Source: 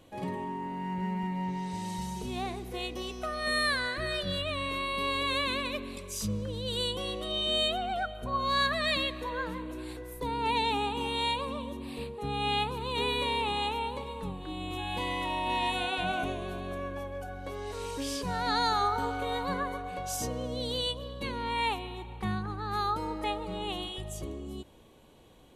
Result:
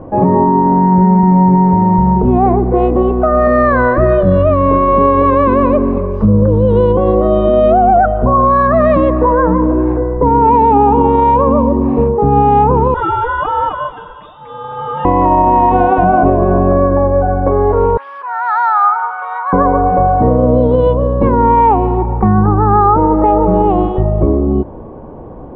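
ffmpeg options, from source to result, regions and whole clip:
-filter_complex "[0:a]asettb=1/sr,asplit=3[a][b][c];[a]atrim=end=12.944[d];[b]atrim=start=12.94:end=15.05,asetpts=PTS-STARTPTS,afade=t=in:d=0.004:c=qsin,afade=t=out:st=2.106:d=0.004:c=qsin,aecho=1:1:6.9:0.8,atrim=end_sample=93051,flanger=delay=0.5:depth=2.6:regen=-58:speed=1.5:shape=triangular,lowpass=f=3.2k:t=q:w=0.5098,lowpass=f=3.2k:t=q:w=0.6013,lowpass=f=3.2k:t=q:w=0.9,lowpass=f=3.2k:t=q:w=2.563,afreqshift=-3800[e];[c]atrim=start=15.046[f];[d][e]acrossfade=d=0.004:c1=hsin:c2=qsin[g];[g][f]acrossfade=d=0.004:c1=qsin:c2=hsin,asettb=1/sr,asplit=3[h][i][j];[h]atrim=end=17.974[k];[i]atrim=start=17.97:end=19.53,asetpts=PTS-STARTPTS,afade=t=in:d=0.004:c=qsin,afade=t=out:st=1.556:d=0.004:c=qsin,highpass=f=1.2k:w=0.5412,highpass=f=1.2k:w=1.3066,acompressor=mode=upward:threshold=-42dB:ratio=2.5:attack=3.2:release=140:knee=2.83:detection=peak[l];[j]atrim=start=19.526[m];[k][l]acrossfade=d=0.004:c1=hsin:c2=qsin[n];[n][m]acrossfade=d=0.004:c1=qsin:c2=hsin,lowpass=f=1.1k:w=0.5412,lowpass=f=1.1k:w=1.3066,alimiter=level_in=28.5dB:limit=-1dB:release=50:level=0:latency=1,volume=-1dB"

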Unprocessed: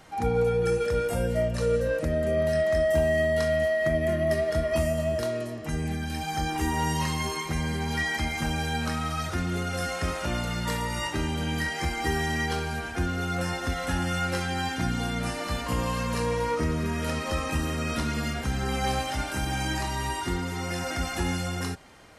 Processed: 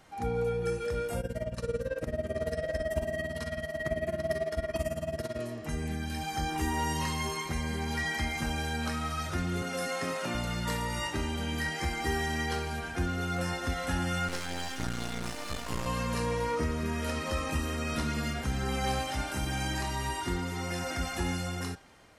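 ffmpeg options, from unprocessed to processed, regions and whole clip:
-filter_complex "[0:a]asettb=1/sr,asplit=3[a][b][c];[a]atrim=end=1.204[d];[b]atrim=start=1.2:end=5.39,asetpts=PTS-STARTPTS,afade=t=in:d=0.004:c=qsin,afade=t=out:st=4.186:d=0.004:c=qsin,aecho=1:1:796:0.316,atrim=end_sample=184779,tremolo=f=18:d=0.95[e];[c]atrim=start=5.386[f];[d][e]acrossfade=d=0.004:c1=hsin:c2=qsin[g];[g][f]acrossfade=d=0.004:c1=qsin:c2=hsin,asettb=1/sr,asplit=3[h][i][j];[h]atrim=end=9.624[k];[i]atrim=start=9.62:end=10.35,asetpts=PTS-STARTPTS,afade=t=in:d=0.004:c=qsin,afade=t=out:st=0.726:d=0.004:c=qsin,highpass=f=140:w=0.5412,highpass=f=140:w=1.3066,aecho=1:1:7.5:0.4,atrim=end_sample=32193[l];[j]atrim=start=10.346[m];[k][l]acrossfade=d=0.004:c1=hsin:c2=qsin[n];[n][m]acrossfade=d=0.004:c1=qsin:c2=hsin,asettb=1/sr,asplit=3[o][p][q];[o]atrim=end=14.284[r];[p]atrim=start=14.28:end=15.86,asetpts=PTS-STARTPTS,afade=t=in:d=0.004:c=qsin,afade=t=out:st=1.576:d=0.004:c=qsin,aemphasis=mode=production:type=cd,acrossover=split=8000[s][t];[t]acompressor=threshold=-50dB:ratio=4:attack=1:release=60[u];[s][u]amix=inputs=2:normalize=0,aeval=exprs='max(val(0),0)':c=same[v];[q]atrim=start=15.856[w];[r][v]acrossfade=d=0.004:c1=hsin:c2=qsin[x];[x][w]acrossfade=d=0.004:c1=qsin:c2=hsin,bandreject=f=158.7:t=h:w=4,bandreject=f=317.4:t=h:w=4,bandreject=f=476.1:t=h:w=4,bandreject=f=634.8:t=h:w=4,bandreject=f=793.5:t=h:w=4,bandreject=f=952.2:t=h:w=4,bandreject=f=1.1109k:t=h:w=4,bandreject=f=1.2696k:t=h:w=4,bandreject=f=1.4283k:t=h:w=4,bandreject=f=1.587k:t=h:w=4,bandreject=f=1.7457k:t=h:w=4,bandreject=f=1.9044k:t=h:w=4,bandreject=f=2.0631k:t=h:w=4,bandreject=f=2.2218k:t=h:w=4,bandreject=f=2.3805k:t=h:w=4,bandreject=f=2.5392k:t=h:w=4,bandreject=f=2.6979k:t=h:w=4,bandreject=f=2.8566k:t=h:w=4,bandreject=f=3.0153k:t=h:w=4,bandreject=f=3.174k:t=h:w=4,bandreject=f=3.3327k:t=h:w=4,bandreject=f=3.4914k:t=h:w=4,bandreject=f=3.6501k:t=h:w=4,bandreject=f=3.8088k:t=h:w=4,bandreject=f=3.9675k:t=h:w=4,bandreject=f=4.1262k:t=h:w=4,bandreject=f=4.2849k:t=h:w=4,bandreject=f=4.4436k:t=h:w=4,bandreject=f=4.6023k:t=h:w=4,bandreject=f=4.761k:t=h:w=4,bandreject=f=4.9197k:t=h:w=4,bandreject=f=5.0784k:t=h:w=4,bandreject=f=5.2371k:t=h:w=4,bandreject=f=5.3958k:t=h:w=4,bandreject=f=5.5545k:t=h:w=4,bandreject=f=5.7132k:t=h:w=4,bandreject=f=5.8719k:t=h:w=4,dynaudnorm=f=670:g=5:m=3dB,volume=-6dB"

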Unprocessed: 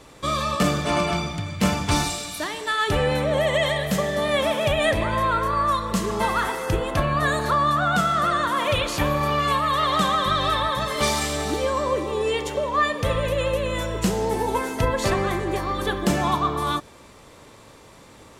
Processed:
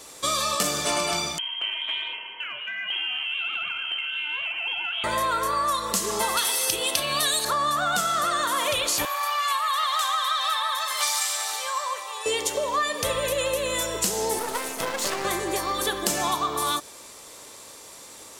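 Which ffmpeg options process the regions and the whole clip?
-filter_complex "[0:a]asettb=1/sr,asplit=3[a][b][c];[a]atrim=end=1.384[d];[b]atrim=start=1.38:end=5.04,asetpts=PTS-STARTPTS,afade=t=in:d=0.004:c=qsin,afade=t=out:st=3.656:d=0.004:c=qsin,lowpass=f=2.8k:t=q:w=0.5098,lowpass=f=2.8k:t=q:w=0.6013,lowpass=f=2.8k:t=q:w=0.9,lowpass=f=2.8k:t=q:w=2.563,afreqshift=-3300,acompressor=threshold=-26dB:ratio=3:attack=3.2:release=140:knee=1:detection=peak,flanger=delay=0.8:depth=8.4:regen=-76:speed=1.3:shape=triangular[e];[c]atrim=start=5.036[f];[d][e]acrossfade=d=0.004:c1=hsin:c2=qsin[g];[g][f]acrossfade=d=0.004:c1=qsin:c2=hsin,asettb=1/sr,asplit=3[h][i][j];[h]atrim=end=6.374[k];[i]atrim=start=6.37:end=7.45,asetpts=PTS-STARTPTS,afade=t=in:d=0.004:c=qsin,afade=t=out:st=1.076:d=0.004:c=qsin,highpass=f=120:p=1,highshelf=f=2.2k:t=q:w=1.5:g=9,bandreject=f=7k:w=8.3[l];[j]atrim=start=7.446[m];[k][l]acrossfade=d=0.004:c1=hsin:c2=qsin[n];[n][m]acrossfade=d=0.004:c1=qsin:c2=hsin,asettb=1/sr,asplit=3[o][p][q];[o]atrim=end=9.054[r];[p]atrim=start=9.05:end=12.26,asetpts=PTS-STARTPTS,afade=t=in:d=0.004:c=qsin,afade=t=out:st=3.206:d=0.004:c=qsin,highpass=f=830:w=0.5412,highpass=f=830:w=1.3066,equalizer=f=8.3k:t=o:w=2.4:g=-6[s];[q]atrim=start=12.256[t];[r][s]acrossfade=d=0.004:c1=hsin:c2=qsin[u];[u][t]acrossfade=d=0.004:c1=qsin:c2=hsin,asettb=1/sr,asplit=3[v][w][x];[v]atrim=end=14.394[y];[w]atrim=start=14.39:end=15.25,asetpts=PTS-STARTPTS,afade=t=in:d=0.004:c=qsin,afade=t=out:st=0.856:d=0.004:c=qsin,highpass=f=140:w=0.5412,highpass=f=140:w=1.3066,bass=f=250:g=3,treble=f=4k:g=-4,aeval=exprs='max(val(0),0)':c=same[z];[x]atrim=start=15.246[aa];[y][z]acrossfade=d=0.004:c1=hsin:c2=qsin[ab];[ab][aa]acrossfade=d=0.004:c1=qsin:c2=hsin,bass=f=250:g=-12,treble=f=4k:g=14,acompressor=threshold=-21dB:ratio=6"

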